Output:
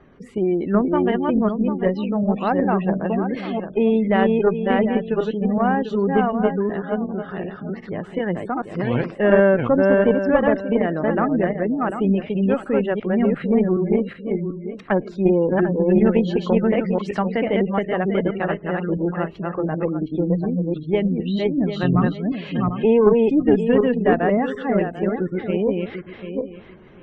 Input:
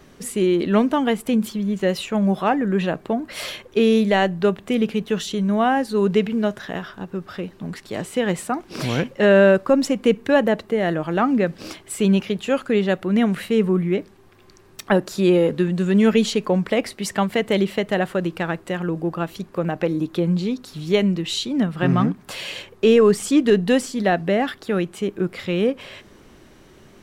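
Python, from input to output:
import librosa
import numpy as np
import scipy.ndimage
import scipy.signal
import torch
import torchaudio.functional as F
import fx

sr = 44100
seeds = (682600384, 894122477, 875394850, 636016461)

y = fx.reverse_delay_fb(x, sr, ms=372, feedback_pct=44, wet_db=-1.5)
y = fx.spec_gate(y, sr, threshold_db=-25, keep='strong')
y = fx.cheby_harmonics(y, sr, harmonics=(2,), levels_db=(-13,), full_scale_db=-1.5)
y = scipy.signal.sosfilt(scipy.signal.butter(2, 2200.0, 'lowpass', fs=sr, output='sos'), y)
y = y * 10.0 ** (-2.0 / 20.0)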